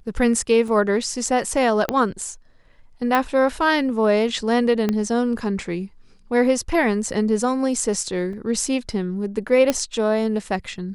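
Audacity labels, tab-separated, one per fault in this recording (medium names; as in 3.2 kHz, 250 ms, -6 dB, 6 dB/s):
0.680000	0.680000	dropout 2.3 ms
1.890000	1.890000	pop -7 dBFS
3.150000	3.150000	pop -7 dBFS
4.890000	4.890000	pop -9 dBFS
8.330000	8.330000	dropout 2.9 ms
9.700000	9.700000	pop -5 dBFS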